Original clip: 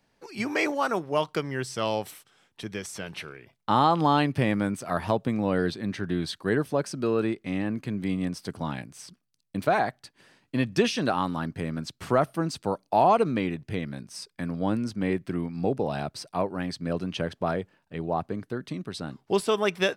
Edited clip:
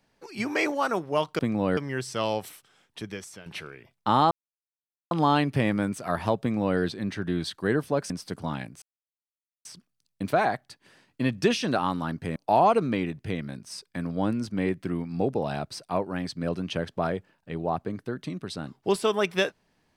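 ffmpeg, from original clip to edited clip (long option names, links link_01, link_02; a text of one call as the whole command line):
ffmpeg -i in.wav -filter_complex "[0:a]asplit=8[link_01][link_02][link_03][link_04][link_05][link_06][link_07][link_08];[link_01]atrim=end=1.392[link_09];[link_02]atrim=start=5.228:end=5.612[link_10];[link_03]atrim=start=1.388:end=3.08,asetpts=PTS-STARTPTS,afade=type=out:start_time=1.232:duration=0.46:silence=0.237137[link_11];[link_04]atrim=start=3.08:end=3.93,asetpts=PTS-STARTPTS,afade=type=in:duration=0.004:curve=hsin:silence=0.237137,afade=type=out:start_time=0.846:duration=0.004:curve=hsin,apad=pad_dur=0.8[link_12];[link_05]atrim=start=3.93:end=6.922,asetpts=PTS-STARTPTS,afade=type=in:duration=0.004:curve=hsin[link_13];[link_06]atrim=start=8.268:end=8.99,asetpts=PTS-STARTPTS,afade=type=out:start_time=0.718:duration=0.004:curve=hsin,apad=pad_dur=0.83[link_14];[link_07]atrim=start=8.99:end=11.702,asetpts=PTS-STARTPTS,afade=type=in:duration=0.004:curve=hsin[link_15];[link_08]atrim=start=12.798[link_16];[link_09][link_10]acrossfade=duration=0.004:curve1=hsin:curve2=hsin[link_17];[link_11][link_12][link_13]concat=n=3:v=0:a=1[link_18];[link_17][link_18]acrossfade=duration=0.004:curve1=hsin:curve2=hsin[link_19];[link_14][link_15]concat=n=2:v=0:a=1[link_20];[link_19][link_20]acrossfade=duration=0.004:curve1=hsin:curve2=hsin[link_21];[link_21][link_16]acrossfade=duration=0.004:curve1=hsin:curve2=hsin" out.wav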